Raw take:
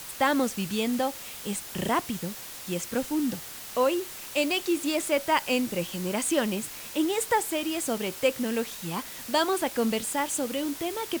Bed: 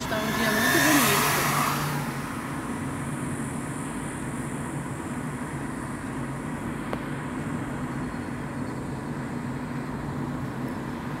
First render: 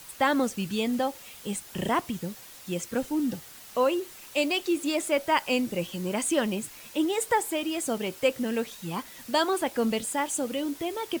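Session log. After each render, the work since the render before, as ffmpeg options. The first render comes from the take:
-af "afftdn=nr=7:nf=-41"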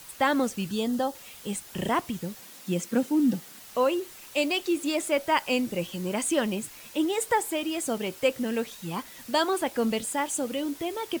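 -filter_complex "[0:a]asettb=1/sr,asplit=3[a][b][c];[a]atrim=end=0.704[d];[b]atrim=start=0.7:end=1.15,asetpts=PTS-STARTPTS,afade=t=in:d=0.004:c=qsin,afade=t=out:st=0.446:d=0.004:c=qsin,equalizer=f=2.3k:w=3.8:g=-13[e];[c]atrim=start=1.146[f];[d][e]acrossfade=d=0.004:c1=hsin:c2=qsin[g];[g][f]acrossfade=d=0.004:c1=qsin:c2=hsin,asettb=1/sr,asplit=3[h][i][j];[h]atrim=end=2.404[k];[i]atrim=start=2.4:end=3.59,asetpts=PTS-STARTPTS,afade=t=in:d=0.004:c=qsin,afade=t=out:st=1.186:d=0.004:c=qsin,highpass=f=200:t=q:w=2.4[l];[j]atrim=start=3.586[m];[k][l]acrossfade=d=0.004:c1=hsin:c2=qsin[n];[n][m]acrossfade=d=0.004:c1=qsin:c2=hsin"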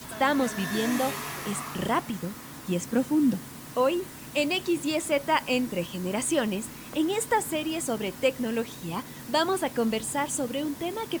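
-filter_complex "[1:a]volume=-12.5dB[a];[0:a][a]amix=inputs=2:normalize=0"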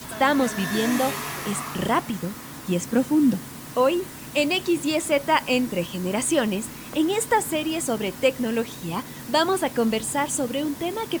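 -af "volume=4dB"

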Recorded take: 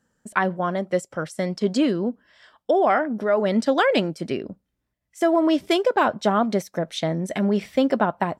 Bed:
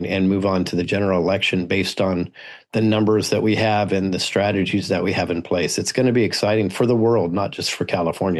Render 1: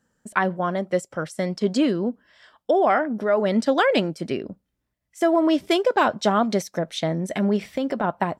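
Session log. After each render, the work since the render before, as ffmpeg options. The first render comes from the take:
-filter_complex "[0:a]asettb=1/sr,asplit=3[a][b][c];[a]atrim=end=5.904[d];[b]atrim=start=5.9:end=6.8,asetpts=PTS-STARTPTS,afade=t=in:d=0.004:c=qsin,afade=t=out:st=0.896:d=0.004:c=qsin,equalizer=f=5.4k:w=0.72:g=5.5[e];[c]atrim=start=6.796[f];[d][e]acrossfade=d=0.004:c1=hsin:c2=qsin[g];[g][f]acrossfade=d=0.004:c1=qsin:c2=hsin,asplit=3[h][i][j];[h]afade=t=out:st=7.56:d=0.02[k];[i]acompressor=threshold=-20dB:ratio=6:attack=3.2:release=140:knee=1:detection=peak,afade=t=in:st=7.56:d=0.02,afade=t=out:st=8.03:d=0.02[l];[j]afade=t=in:st=8.03:d=0.02[m];[k][l][m]amix=inputs=3:normalize=0"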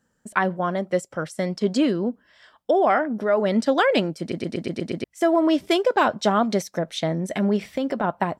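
-filter_complex "[0:a]asplit=8[a][b][c][d][e][f][g][h];[a]atrim=end=4.322[i];[b]atrim=start=4.198:end=4.322[j];[c]atrim=start=4.198:end=4.322[k];[d]atrim=start=4.198:end=4.322[l];[e]atrim=start=4.198:end=4.322[m];[f]atrim=start=4.198:end=4.322[n];[g]atrim=start=4.198:end=4.322[o];[h]atrim=start=5.038[p];[i][j]acrossfade=d=0.004:c1=hsin:c2=hsin[q];[q][k]acrossfade=d=0.004:c1=hsin:c2=hsin[r];[r][l]acrossfade=d=0.004:c1=hsin:c2=hsin[s];[s][m]acrossfade=d=0.004:c1=hsin:c2=hsin[t];[t][n]acrossfade=d=0.004:c1=hsin:c2=hsin[u];[u][o]acrossfade=d=0.004:c1=hsin:c2=hsin[v];[v][p]acrossfade=d=0.004:c1=hsin:c2=hsin"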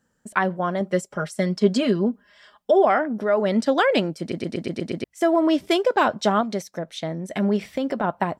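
-filter_complex "[0:a]asettb=1/sr,asplit=3[a][b][c];[a]atrim=end=0.804[d];[b]atrim=start=0.8:end=2.85,asetpts=PTS-STARTPTS,afade=t=in:d=0.004:c=qsin,afade=t=out:st=2.046:d=0.004:c=qsin,aecho=1:1:4.9:0.69,atrim=end_sample=90405[e];[c]atrim=start=2.846[f];[d][e]acrossfade=d=0.004:c1=hsin:c2=qsin[g];[g][f]acrossfade=d=0.004:c1=qsin:c2=hsin,asplit=3[h][i][j];[h]atrim=end=6.412[k];[i]atrim=start=6.408:end=7.362,asetpts=PTS-STARTPTS,volume=-4.5dB[l];[j]atrim=start=7.358[m];[k][l]acrossfade=d=0.004:c1=hsin:c2=hsin[n];[n][m]acrossfade=d=0.004:c1=hsin:c2=hsin"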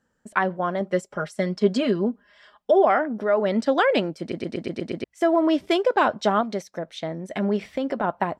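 -af "lowpass=f=3.9k:p=1,equalizer=f=150:t=o:w=1.4:g=-4"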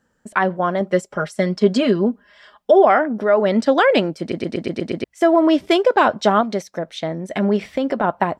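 -af "volume=5.5dB,alimiter=limit=-3dB:level=0:latency=1"

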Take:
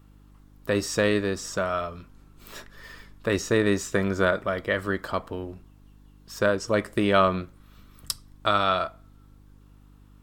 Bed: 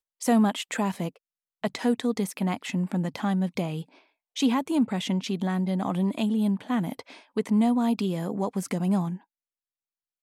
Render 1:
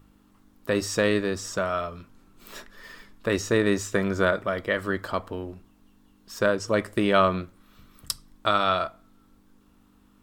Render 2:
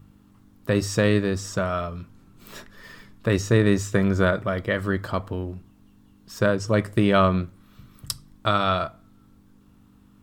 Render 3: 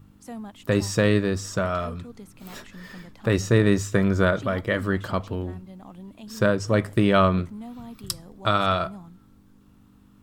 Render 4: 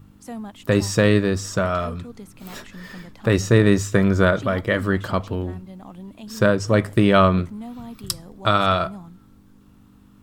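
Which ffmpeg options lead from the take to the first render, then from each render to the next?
-af "bandreject=f=50:t=h:w=4,bandreject=f=100:t=h:w=4,bandreject=f=150:t=h:w=4"
-af "equalizer=f=120:w=0.99:g=12"
-filter_complex "[1:a]volume=-16.5dB[a];[0:a][a]amix=inputs=2:normalize=0"
-af "volume=3.5dB"

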